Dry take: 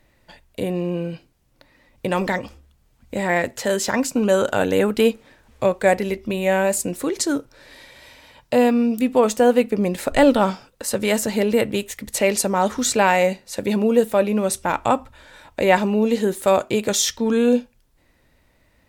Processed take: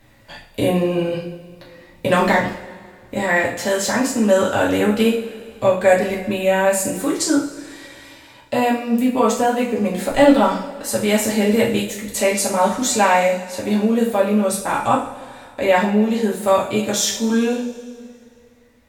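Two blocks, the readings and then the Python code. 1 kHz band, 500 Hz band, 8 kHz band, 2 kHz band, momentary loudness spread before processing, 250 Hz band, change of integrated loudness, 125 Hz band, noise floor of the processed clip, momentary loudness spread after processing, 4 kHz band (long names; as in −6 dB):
+3.0 dB, +1.0 dB, +2.0 dB, +3.0 dB, 10 LU, +2.5 dB, +2.0 dB, +2.0 dB, −49 dBFS, 13 LU, +2.0 dB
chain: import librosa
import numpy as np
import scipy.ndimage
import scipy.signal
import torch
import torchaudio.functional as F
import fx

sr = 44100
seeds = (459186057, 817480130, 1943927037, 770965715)

y = fx.rev_double_slope(x, sr, seeds[0], early_s=0.44, late_s=2.3, knee_db=-18, drr_db=-5.5)
y = fx.rider(y, sr, range_db=10, speed_s=2.0)
y = F.gain(torch.from_numpy(y), -4.5).numpy()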